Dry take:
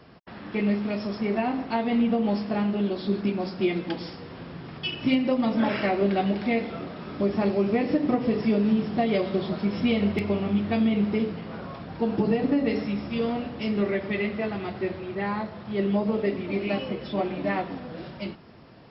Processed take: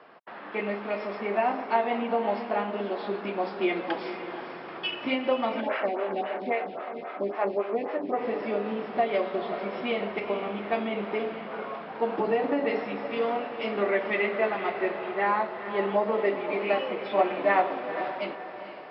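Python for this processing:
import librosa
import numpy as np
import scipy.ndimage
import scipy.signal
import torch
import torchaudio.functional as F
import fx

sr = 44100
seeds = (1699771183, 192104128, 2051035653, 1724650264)

y = fx.high_shelf(x, sr, hz=2800.0, db=-9.0)
y = fx.rider(y, sr, range_db=4, speed_s=2.0)
y = scipy.signal.sosfilt(scipy.signal.butter(2, 650.0, 'highpass', fs=sr, output='sos'), y)
y = fx.air_absorb(y, sr, metres=280.0)
y = fx.echo_diffused(y, sr, ms=472, feedback_pct=41, wet_db=-10.0)
y = fx.stagger_phaser(y, sr, hz=3.7, at=(5.6, 8.16), fade=0.02)
y = y * 10.0 ** (7.5 / 20.0)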